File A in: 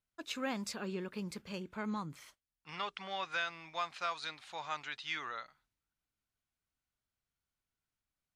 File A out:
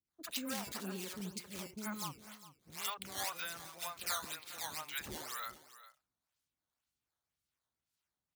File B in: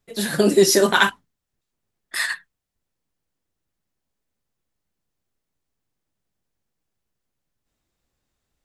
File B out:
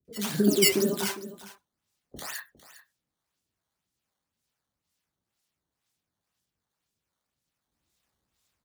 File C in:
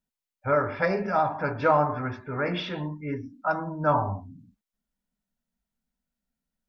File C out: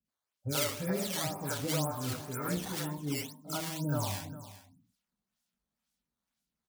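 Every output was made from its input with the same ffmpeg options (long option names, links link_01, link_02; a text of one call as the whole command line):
ffmpeg -i in.wav -filter_complex "[0:a]acrossover=split=460[link_01][link_02];[link_02]acompressor=threshold=-35dB:ratio=12[link_03];[link_01][link_03]amix=inputs=2:normalize=0,acrusher=samples=10:mix=1:aa=0.000001:lfo=1:lforange=16:lforate=2,acrossover=split=470|1900[link_04][link_05][link_06];[link_06]adelay=50[link_07];[link_05]adelay=80[link_08];[link_04][link_08][link_07]amix=inputs=3:normalize=0,acrossover=split=510[link_09][link_10];[link_09]aeval=exprs='val(0)*(1-0.5/2+0.5/2*cos(2*PI*2.3*n/s))':channel_layout=same[link_11];[link_10]aeval=exprs='val(0)*(1-0.5/2-0.5/2*cos(2*PI*2.3*n/s))':channel_layout=same[link_12];[link_11][link_12]amix=inputs=2:normalize=0,highpass=53,highshelf=frequency=2500:gain=11,asplit=2[link_13][link_14];[link_14]aecho=0:1:406:0.168[link_15];[link_13][link_15]amix=inputs=2:normalize=0,volume=-1dB" out.wav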